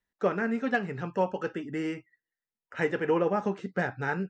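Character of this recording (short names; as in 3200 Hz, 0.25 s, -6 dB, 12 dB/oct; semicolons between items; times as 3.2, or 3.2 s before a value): noise floor -94 dBFS; spectral tilt -2.5 dB/oct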